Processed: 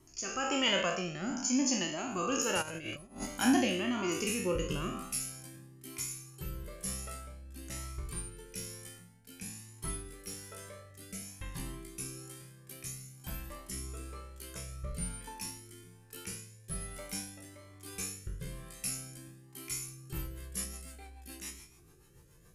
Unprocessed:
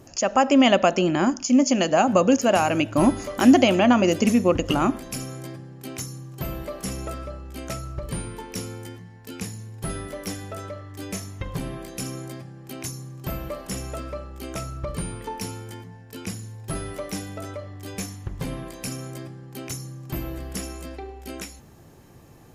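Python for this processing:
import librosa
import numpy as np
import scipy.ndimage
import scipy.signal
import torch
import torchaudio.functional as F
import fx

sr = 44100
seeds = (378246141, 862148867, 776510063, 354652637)

y = fx.spec_trails(x, sr, decay_s=0.77)
y = fx.over_compress(y, sr, threshold_db=-23.0, ratio=-0.5, at=(2.61, 3.25), fade=0.02)
y = fx.graphic_eq_15(y, sr, hz=(100, 250, 630, 10000), db=(-7, -4, -9, 9))
y = fx.rotary_switch(y, sr, hz=1.1, then_hz=7.0, switch_at_s=19.77)
y = fx.comb_cascade(y, sr, direction='rising', hz=0.51)
y = y * librosa.db_to_amplitude(-5.0)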